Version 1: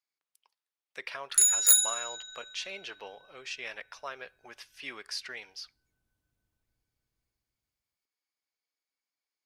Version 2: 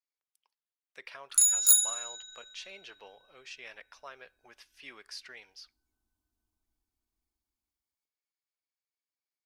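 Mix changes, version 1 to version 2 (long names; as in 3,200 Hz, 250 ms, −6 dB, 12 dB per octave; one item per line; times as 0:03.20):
speech −7.0 dB
background: add phaser with its sweep stopped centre 520 Hz, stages 6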